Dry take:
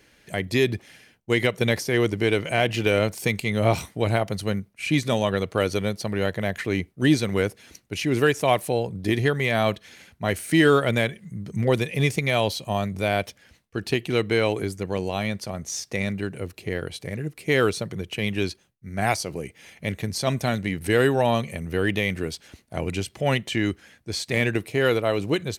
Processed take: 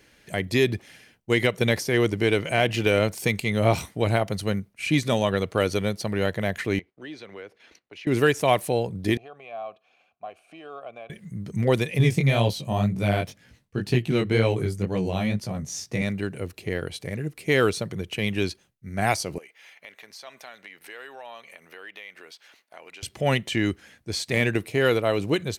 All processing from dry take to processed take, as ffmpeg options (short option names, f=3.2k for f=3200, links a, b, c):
-filter_complex "[0:a]asettb=1/sr,asplit=3[a][b][c];[a]atrim=end=6.794[d];[b]atrim=start=6.79:end=8.07,asetpts=PTS-STARTPTS,afade=t=in:d=0.004:c=qsin,afade=t=out:st=1.276:d=0.004:c=qsin,agate=range=-10dB:threshold=-51dB:ratio=16:release=100:detection=peak,acrossover=split=320 4500:gain=0.158 1 0.1[e][f][g];[e][f][g]amix=inputs=3:normalize=0,acompressor=threshold=-48dB:ratio=2:attack=3.2:release=140:knee=1:detection=peak[h];[c]atrim=start=8.066[i];[d][h]acrossfade=d=0.004:c1=hsin:c2=qsin[j];[j][i]acrossfade=d=0.004:c1=qsin:c2=hsin,asettb=1/sr,asplit=3[k][l][m];[k]atrim=end=9.174[n];[l]atrim=start=9.17:end=11.1,asetpts=PTS-STARTPTS,afade=t=in:d=0.004:c=qsin,afade=t=out:st=1.926:d=0.004:c=qsin,acompressor=threshold=-24dB:ratio=2.5:attack=3.2:release=140:knee=1:detection=peak,asplit=3[o][p][q];[o]bandpass=f=730:t=q:w=8,volume=0dB[r];[p]bandpass=f=1.09k:t=q:w=8,volume=-6dB[s];[q]bandpass=f=2.44k:t=q:w=8,volume=-9dB[t];[r][s][t]amix=inputs=3:normalize=0,adynamicequalizer=threshold=0.00316:dfrequency=1500:dqfactor=0.7:tfrequency=1500:tqfactor=0.7:attack=5:release=100:ratio=0.375:range=2.5:mode=cutabove:tftype=highshelf[u];[m]atrim=start=11.096[v];[n][u]acrossfade=d=0.004:c1=hsin:c2=qsin[w];[w][v]acrossfade=d=0.004:c1=qsin:c2=hsin,asettb=1/sr,asplit=3[x][y][z];[x]atrim=end=11.984[aa];[y]atrim=start=11.98:end=16.02,asetpts=PTS-STARTPTS,afade=t=in:d=0.004:c=qsin,afade=t=out:st=4.036:d=0.004:c=qsin,flanger=delay=16.5:depth=6.5:speed=2,equalizer=f=140:t=o:w=1.8:g=10[ab];[z]atrim=start=16.016[ac];[aa][ab]acrossfade=d=0.004:c1=hsin:c2=qsin[ad];[ad][ac]acrossfade=d=0.004:c1=qsin:c2=hsin,asettb=1/sr,asplit=3[ae][af][ag];[ae]atrim=end=19.384[ah];[af]atrim=start=19.38:end=23.03,asetpts=PTS-STARTPTS,afade=t=in:d=0.004:c=qsin,afade=t=out:st=3.646:d=0.004:c=qsin,highpass=840,equalizer=f=9.1k:w=0.7:g=-10.5,acompressor=threshold=-44dB:ratio=2.5:attack=3.2:release=140:knee=1:detection=peak[ai];[ag]atrim=start=23.026[aj];[ah][ai]acrossfade=d=0.004:c1=hsin:c2=qsin[ak];[ak][aj]acrossfade=d=0.004:c1=qsin:c2=hsin"